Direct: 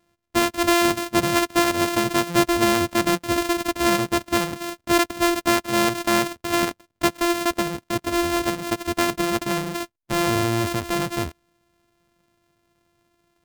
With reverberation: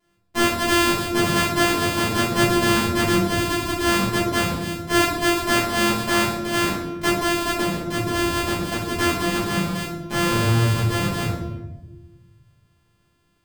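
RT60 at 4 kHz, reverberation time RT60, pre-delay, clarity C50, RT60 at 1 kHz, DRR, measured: 0.70 s, 1.1 s, 5 ms, 1.5 dB, 0.90 s, −10.5 dB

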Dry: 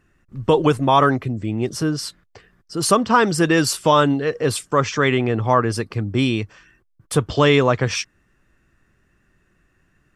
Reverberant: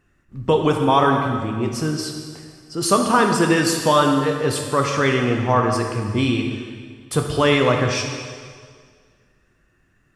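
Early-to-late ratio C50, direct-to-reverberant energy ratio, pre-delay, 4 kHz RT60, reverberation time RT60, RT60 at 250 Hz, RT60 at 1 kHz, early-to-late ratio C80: 4.0 dB, 2.0 dB, 6 ms, 1.8 s, 1.9 s, 1.9 s, 1.9 s, 5.5 dB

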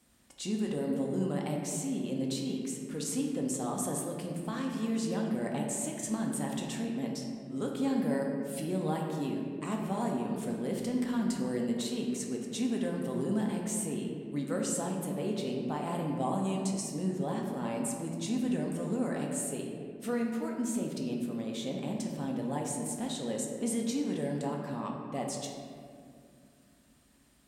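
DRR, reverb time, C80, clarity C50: −0.5 dB, 2.3 s, 3.5 dB, 2.0 dB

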